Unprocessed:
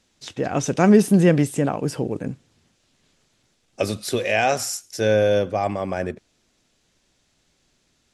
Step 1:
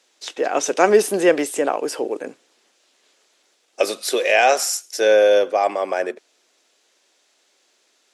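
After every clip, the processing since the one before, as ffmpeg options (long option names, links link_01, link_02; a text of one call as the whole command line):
ffmpeg -i in.wav -af "highpass=frequency=370:width=0.5412,highpass=frequency=370:width=1.3066,volume=5dB" out.wav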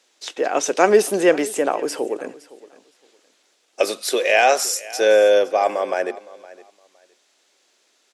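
ffmpeg -i in.wav -af "aecho=1:1:514|1028:0.1|0.02" out.wav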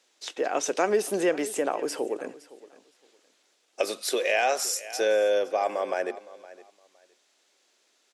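ffmpeg -i in.wav -af "acompressor=threshold=-18dB:ratio=2,volume=-5dB" out.wav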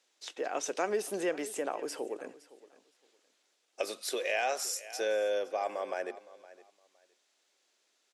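ffmpeg -i in.wav -af "lowshelf=frequency=390:gain=-3,volume=-6.5dB" out.wav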